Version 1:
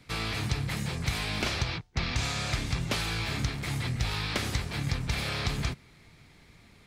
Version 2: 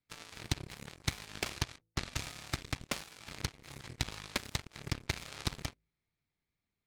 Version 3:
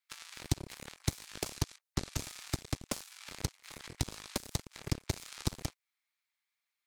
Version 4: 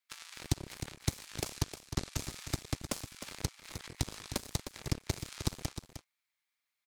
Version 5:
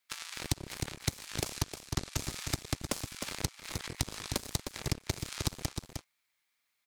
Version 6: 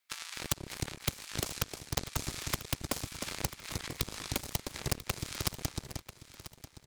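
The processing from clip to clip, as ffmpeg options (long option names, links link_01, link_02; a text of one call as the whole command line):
ffmpeg -i in.wav -af "bandreject=frequency=54.87:width_type=h:width=4,bandreject=frequency=109.74:width_type=h:width=4,bandreject=frequency=164.61:width_type=h:width=4,bandreject=frequency=219.48:width_type=h:width=4,bandreject=frequency=274.35:width_type=h:width=4,bandreject=frequency=329.22:width_type=h:width=4,bandreject=frequency=384.09:width_type=h:width=4,bandreject=frequency=438.96:width_type=h:width=4,bandreject=frequency=493.83:width_type=h:width=4,bandreject=frequency=548.7:width_type=h:width=4,bandreject=frequency=603.57:width_type=h:width=4,aeval=exprs='0.15*(cos(1*acos(clip(val(0)/0.15,-1,1)))-cos(1*PI/2))+0.0211*(cos(2*acos(clip(val(0)/0.15,-1,1)))-cos(2*PI/2))+0.0531*(cos(3*acos(clip(val(0)/0.15,-1,1)))-cos(3*PI/2))+0.00596*(cos(4*acos(clip(val(0)/0.15,-1,1)))-cos(4*PI/2))+0.00133*(cos(5*acos(clip(val(0)/0.15,-1,1)))-cos(5*PI/2))':channel_layout=same,volume=2.5dB" out.wav
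ffmpeg -i in.wav -filter_complex "[0:a]acrossover=split=890|5100[link_01][link_02][link_03];[link_01]aeval=exprs='sgn(val(0))*max(abs(val(0))-0.00473,0)':channel_layout=same[link_04];[link_02]acompressor=threshold=-50dB:ratio=6[link_05];[link_04][link_05][link_03]amix=inputs=3:normalize=0,volume=4dB" out.wav
ffmpeg -i in.wav -af "aecho=1:1:308:0.316" out.wav
ffmpeg -i in.wav -af "acompressor=threshold=-36dB:ratio=3,volume=6.5dB" out.wav
ffmpeg -i in.wav -af "aeval=exprs='(mod(7.5*val(0)+1,2)-1)/7.5':channel_layout=same,aecho=1:1:991|1982|2973:0.188|0.064|0.0218" out.wav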